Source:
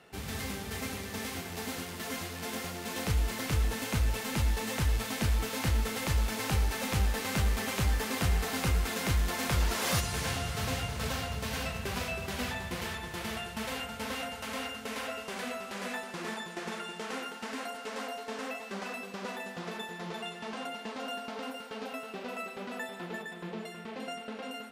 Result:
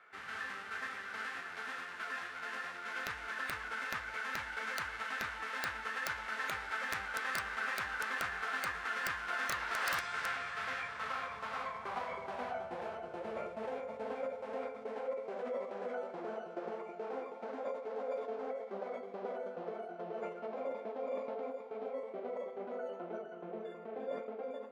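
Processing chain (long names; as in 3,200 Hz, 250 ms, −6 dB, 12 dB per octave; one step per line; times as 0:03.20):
band-pass filter sweep 1,800 Hz → 650 Hz, 0:10.82–0:13.21
wrap-around overflow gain 29 dB
formants moved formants −3 semitones
level +4.5 dB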